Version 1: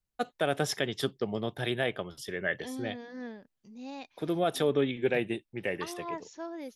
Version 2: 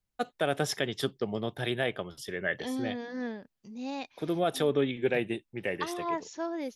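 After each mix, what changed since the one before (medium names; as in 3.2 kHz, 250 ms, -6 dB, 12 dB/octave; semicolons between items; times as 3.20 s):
second voice +5.5 dB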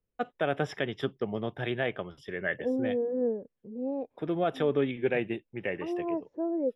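first voice: add Savitzky-Golay filter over 25 samples; second voice: add resonant low-pass 480 Hz, resonance Q 4.5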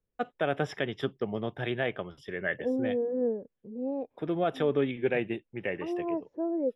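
no change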